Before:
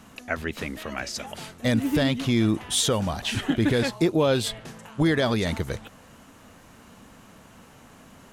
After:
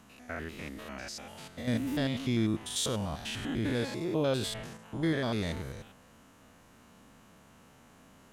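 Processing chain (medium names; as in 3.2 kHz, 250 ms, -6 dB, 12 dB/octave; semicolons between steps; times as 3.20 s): spectrogram pixelated in time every 100 ms; 4.33–4.77 s: decay stretcher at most 40 dB/s; trim -6.5 dB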